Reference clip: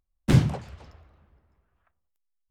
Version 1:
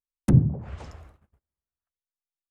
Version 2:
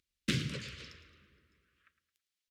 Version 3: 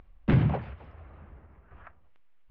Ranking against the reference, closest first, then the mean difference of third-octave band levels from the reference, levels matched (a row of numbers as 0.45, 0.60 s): 3, 1, 2; 4.5, 7.0, 11.0 dB